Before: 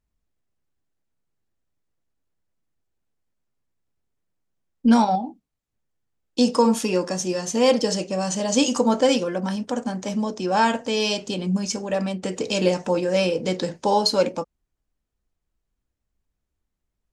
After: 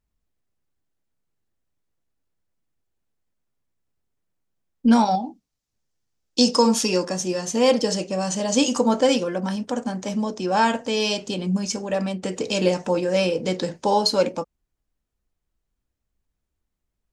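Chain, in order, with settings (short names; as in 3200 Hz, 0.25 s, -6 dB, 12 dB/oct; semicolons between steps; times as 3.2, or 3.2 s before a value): 5.05–7.05 bell 5500 Hz +9.5 dB 1.1 oct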